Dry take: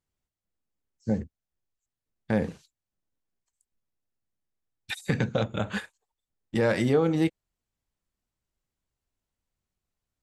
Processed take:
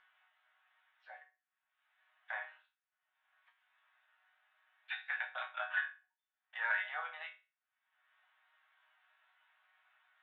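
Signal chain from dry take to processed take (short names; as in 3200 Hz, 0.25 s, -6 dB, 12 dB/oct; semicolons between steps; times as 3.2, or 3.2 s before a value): Chebyshev band-pass 650–3600 Hz, order 5; bell 1600 Hz +14 dB 1.2 oct; upward compressor, threshold -37 dBFS; resonator bank B2 major, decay 0.31 s; gain +1 dB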